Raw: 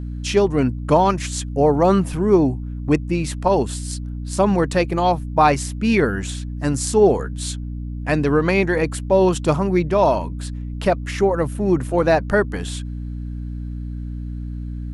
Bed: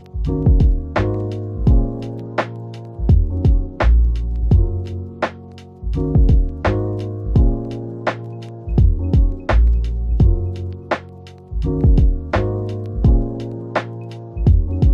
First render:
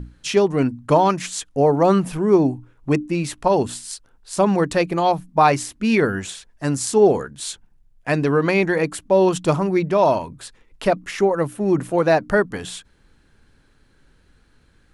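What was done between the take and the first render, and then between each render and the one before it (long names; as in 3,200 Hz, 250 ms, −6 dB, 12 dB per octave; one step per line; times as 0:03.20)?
mains-hum notches 60/120/180/240/300 Hz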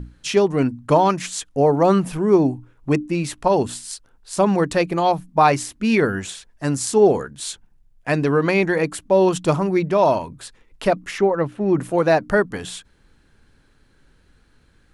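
0:11.18–0:11.78: low-pass filter 3,900 Hz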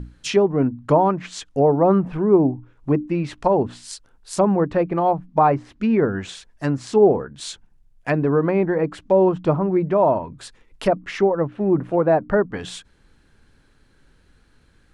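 treble cut that deepens with the level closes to 1,100 Hz, closed at −15.5 dBFS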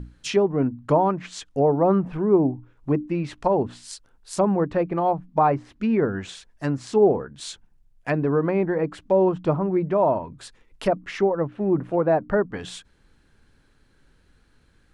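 level −3 dB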